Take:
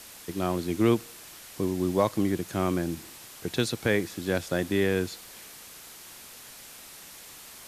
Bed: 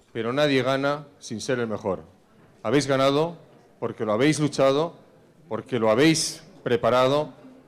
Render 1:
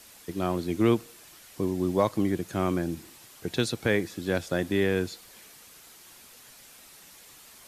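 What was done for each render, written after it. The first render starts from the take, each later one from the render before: noise reduction 6 dB, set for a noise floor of -47 dBFS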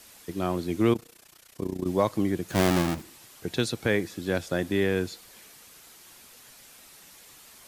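0.93–1.87 s: AM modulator 30 Hz, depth 80%; 2.50–3.02 s: square wave that keeps the level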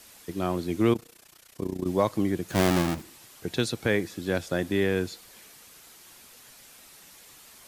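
no audible change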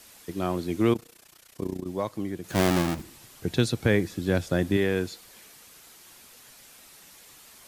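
1.80–2.44 s: gain -6 dB; 2.99–4.77 s: bass shelf 200 Hz +9.5 dB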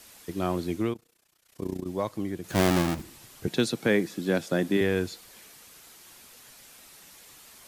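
0.68–1.71 s: dip -14 dB, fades 0.29 s; 3.47–4.81 s: high-pass 160 Hz 24 dB/octave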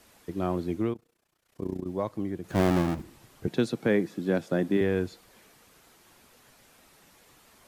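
treble shelf 2.2 kHz -11 dB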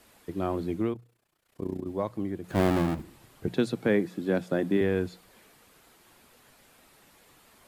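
peaking EQ 5.9 kHz -4 dB 0.43 oct; hum notches 60/120/180 Hz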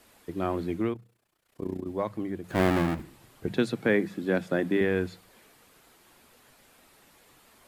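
dynamic bell 1.9 kHz, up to +5 dB, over -48 dBFS, Q 1.1; hum notches 50/100/150/200 Hz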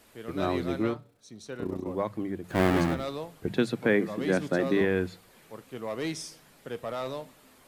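add bed -14.5 dB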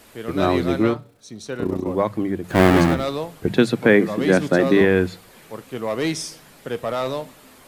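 trim +9.5 dB

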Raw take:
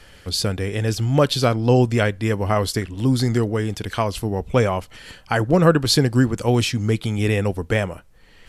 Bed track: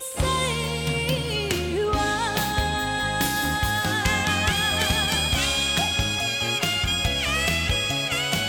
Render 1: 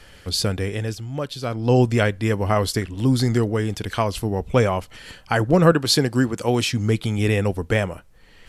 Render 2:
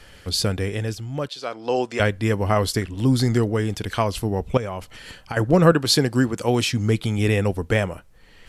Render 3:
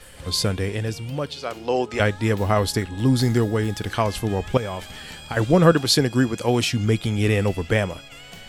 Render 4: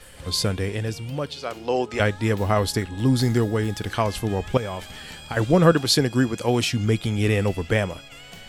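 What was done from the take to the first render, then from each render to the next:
0.64–1.80 s: dip -11 dB, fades 0.38 s; 5.72–6.73 s: high-pass 190 Hz 6 dB/octave
1.28–2.00 s: band-pass 460–7400 Hz; 4.57–5.37 s: compression 12:1, threshold -24 dBFS
add bed track -17.5 dB
trim -1 dB

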